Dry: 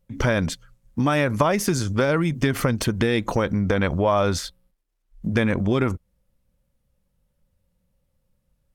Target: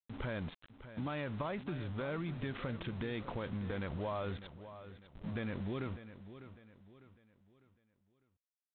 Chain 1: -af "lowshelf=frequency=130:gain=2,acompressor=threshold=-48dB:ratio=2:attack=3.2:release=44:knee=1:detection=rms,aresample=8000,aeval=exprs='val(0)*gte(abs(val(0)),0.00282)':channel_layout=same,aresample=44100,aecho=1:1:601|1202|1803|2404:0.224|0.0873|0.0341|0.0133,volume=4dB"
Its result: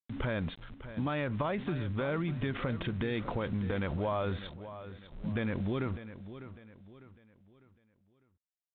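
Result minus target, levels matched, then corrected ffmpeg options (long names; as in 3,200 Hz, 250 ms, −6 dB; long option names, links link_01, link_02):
downward compressor: peak gain reduction −6 dB
-af "lowshelf=frequency=130:gain=2,acompressor=threshold=-60dB:ratio=2:attack=3.2:release=44:knee=1:detection=rms,aresample=8000,aeval=exprs='val(0)*gte(abs(val(0)),0.00282)':channel_layout=same,aresample=44100,aecho=1:1:601|1202|1803|2404:0.224|0.0873|0.0341|0.0133,volume=4dB"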